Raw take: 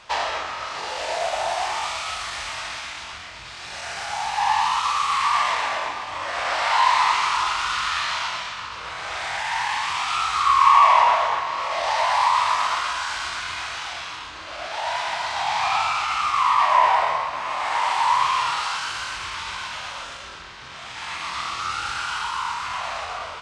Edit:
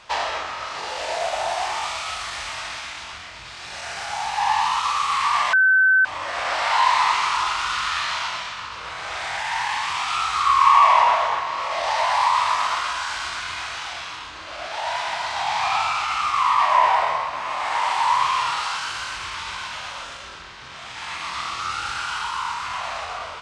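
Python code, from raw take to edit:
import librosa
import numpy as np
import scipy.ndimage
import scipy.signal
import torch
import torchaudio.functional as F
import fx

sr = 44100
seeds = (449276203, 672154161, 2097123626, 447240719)

y = fx.edit(x, sr, fx.bleep(start_s=5.53, length_s=0.52, hz=1530.0, db=-12.5), tone=tone)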